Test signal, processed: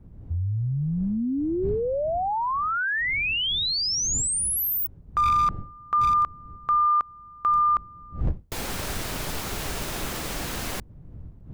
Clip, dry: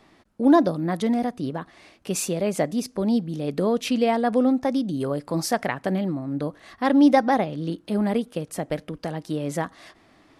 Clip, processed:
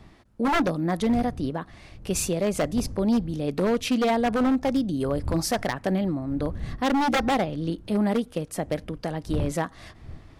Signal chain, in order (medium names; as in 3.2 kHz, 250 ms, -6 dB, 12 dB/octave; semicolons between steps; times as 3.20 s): wind noise 100 Hz -38 dBFS; wavefolder -16.5 dBFS